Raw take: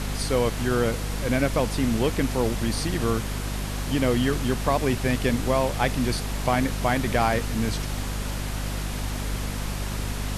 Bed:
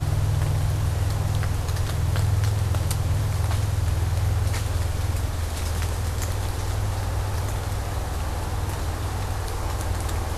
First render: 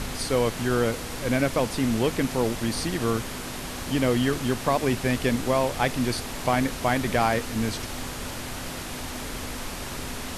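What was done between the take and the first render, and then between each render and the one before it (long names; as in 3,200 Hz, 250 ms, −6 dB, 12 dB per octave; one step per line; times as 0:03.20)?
hum removal 50 Hz, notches 4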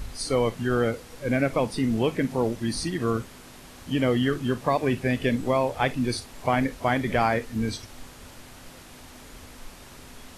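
noise reduction from a noise print 12 dB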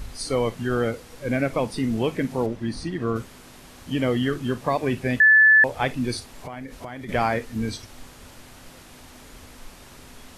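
0:02.46–0:03.16: low-pass filter 2,400 Hz 6 dB per octave
0:05.20–0:05.64: beep over 1,740 Hz −10.5 dBFS
0:06.35–0:07.09: downward compressor 8 to 1, threshold −32 dBFS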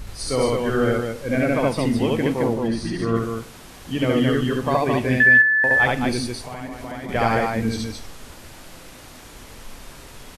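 loudspeakers that aren't time-aligned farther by 24 metres 0 dB, 74 metres −3 dB
four-comb reverb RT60 0.72 s, combs from 33 ms, DRR 17.5 dB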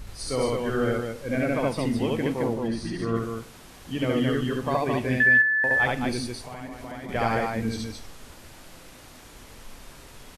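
level −5 dB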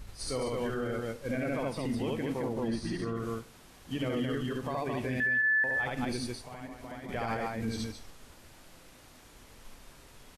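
brickwall limiter −22.5 dBFS, peak gain reduction 11.5 dB
expander for the loud parts 1.5 to 1, over −41 dBFS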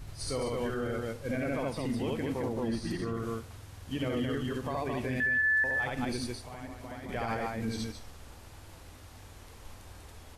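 mix in bed −25 dB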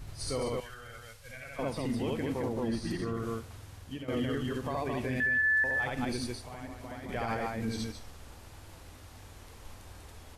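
0:00.60–0:01.59: guitar amp tone stack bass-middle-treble 10-0-10
0:03.63–0:04.08: fade out equal-power, to −14.5 dB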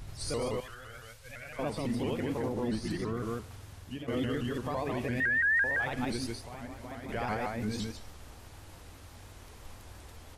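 pitch modulation by a square or saw wave saw up 5.9 Hz, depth 160 cents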